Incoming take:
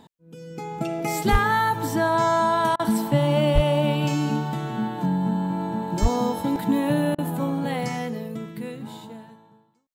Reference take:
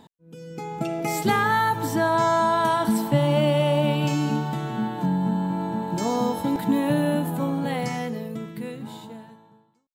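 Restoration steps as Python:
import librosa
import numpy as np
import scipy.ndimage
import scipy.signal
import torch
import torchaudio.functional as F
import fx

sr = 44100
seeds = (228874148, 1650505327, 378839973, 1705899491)

y = fx.fix_declip(x, sr, threshold_db=-9.5)
y = fx.fix_deplosive(y, sr, at_s=(1.31, 3.54, 6.01))
y = fx.fix_interpolate(y, sr, at_s=(2.76, 7.15), length_ms=33.0)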